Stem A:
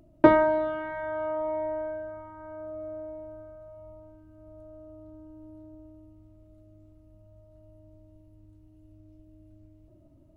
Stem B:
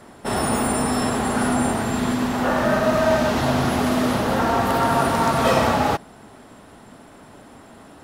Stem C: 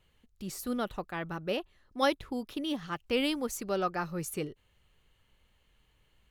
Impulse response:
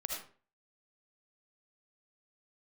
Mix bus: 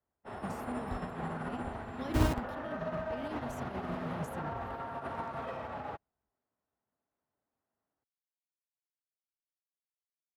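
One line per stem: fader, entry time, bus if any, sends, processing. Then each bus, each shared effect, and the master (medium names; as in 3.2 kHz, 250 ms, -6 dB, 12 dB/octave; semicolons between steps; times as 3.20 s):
+2.0 dB, 1.90 s, no bus, no send, Schmitt trigger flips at -18.5 dBFS
-5.5 dB, 0.00 s, bus A, no send, three-band isolator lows -17 dB, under 430 Hz, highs -19 dB, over 2.9 kHz
-9.0 dB, 0.00 s, bus A, no send, peaking EQ 83 Hz +11 dB 2 oct; hum notches 60/120/180 Hz; decay stretcher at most 47 dB/s
bus A: 0.0 dB, bass shelf 230 Hz +8.5 dB; peak limiter -22 dBFS, peak gain reduction 9.5 dB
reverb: none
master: high-pass 55 Hz; bass shelf 210 Hz +11.5 dB; upward expansion 2.5:1, over -47 dBFS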